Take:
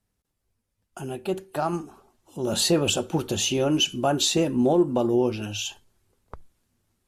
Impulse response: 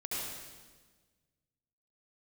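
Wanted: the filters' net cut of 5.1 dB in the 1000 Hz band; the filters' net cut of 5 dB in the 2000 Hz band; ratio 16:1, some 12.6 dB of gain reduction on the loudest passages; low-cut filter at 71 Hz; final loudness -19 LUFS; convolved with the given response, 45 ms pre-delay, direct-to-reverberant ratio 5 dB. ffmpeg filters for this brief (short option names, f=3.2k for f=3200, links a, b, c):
-filter_complex "[0:a]highpass=71,equalizer=f=1k:t=o:g=-6.5,equalizer=f=2k:t=o:g=-6.5,acompressor=threshold=-29dB:ratio=16,asplit=2[a][b];[1:a]atrim=start_sample=2205,adelay=45[c];[b][c]afir=irnorm=-1:irlink=0,volume=-8.5dB[d];[a][d]amix=inputs=2:normalize=0,volume=14dB"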